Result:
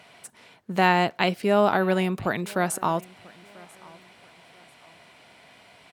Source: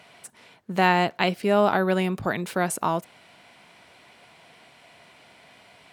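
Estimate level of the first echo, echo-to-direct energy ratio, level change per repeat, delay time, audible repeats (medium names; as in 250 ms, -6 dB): -24.0 dB, -23.5 dB, -10.0 dB, 990 ms, 2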